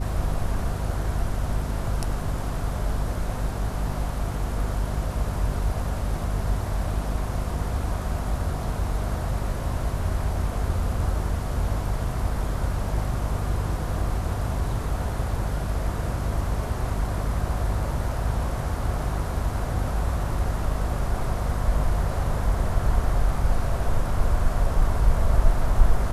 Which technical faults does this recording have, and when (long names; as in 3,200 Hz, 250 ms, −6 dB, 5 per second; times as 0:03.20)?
mains hum 50 Hz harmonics 5 −29 dBFS